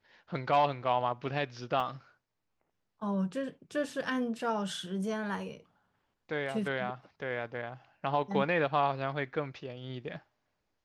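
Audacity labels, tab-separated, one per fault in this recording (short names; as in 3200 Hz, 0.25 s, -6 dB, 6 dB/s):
1.800000	1.800000	gap 4.8 ms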